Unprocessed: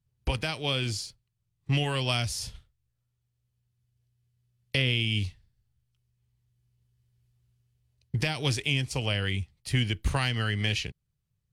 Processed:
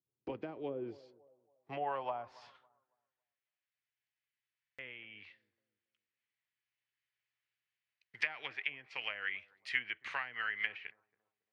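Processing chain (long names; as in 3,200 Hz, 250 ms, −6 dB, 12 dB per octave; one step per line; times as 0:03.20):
meter weighting curve A
treble cut that deepens with the level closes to 740 Hz, closed at −25 dBFS
low-shelf EQ 110 Hz +11 dB
bucket-brigade delay 277 ms, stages 2,048, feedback 35%, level −21 dB
band-pass filter sweep 330 Hz → 2,000 Hz, 0:00.61–0:03.45
buffer that repeats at 0:04.60, samples 2,048, times 3
level +3.5 dB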